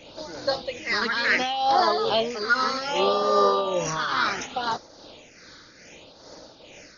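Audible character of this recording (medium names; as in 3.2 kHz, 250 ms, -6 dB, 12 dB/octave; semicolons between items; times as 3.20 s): a quantiser's noise floor 8-bit, dither triangular; tremolo triangle 2.4 Hz, depth 55%; phasing stages 6, 0.67 Hz, lowest notch 700–2600 Hz; AC-3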